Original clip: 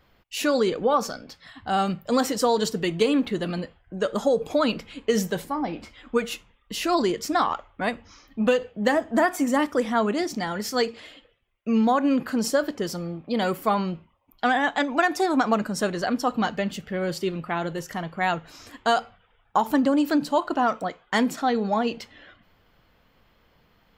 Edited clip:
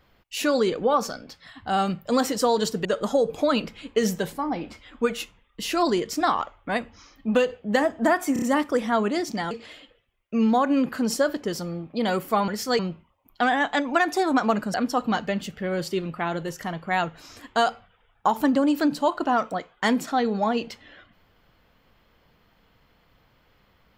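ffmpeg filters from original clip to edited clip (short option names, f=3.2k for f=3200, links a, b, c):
-filter_complex "[0:a]asplit=9[a][b][c][d][e][f][g][h][i];[a]atrim=end=2.852[j];[b]atrim=start=3.968:end=9.482[k];[c]atrim=start=9.448:end=9.482[l];[d]atrim=start=9.448:end=9.482[m];[e]atrim=start=9.448:end=10.542[n];[f]atrim=start=10.848:end=13.822[o];[g]atrim=start=10.538:end=10.852[p];[h]atrim=start=13.818:end=15.772[q];[i]atrim=start=16.038[r];[j][k]acrossfade=d=0.004:c1=hsin:c2=hsin[s];[s][l]acrossfade=d=0.004:c1=hsin:c2=hsin[t];[t][m]acrossfade=d=0.004:c1=hsin:c2=hsin[u];[u][n]acrossfade=d=0.004:c1=hsin:c2=hsin[v];[v][o]acrossfade=d=0.004:c1=hsin:c2=hsin[w];[w][p]acrossfade=d=0.004:c1=hsin:c2=hsin[x];[x][q]acrossfade=d=0.004:c1=hsin:c2=hsin[y];[y][r]acrossfade=d=0.004:c1=hsin:c2=hsin"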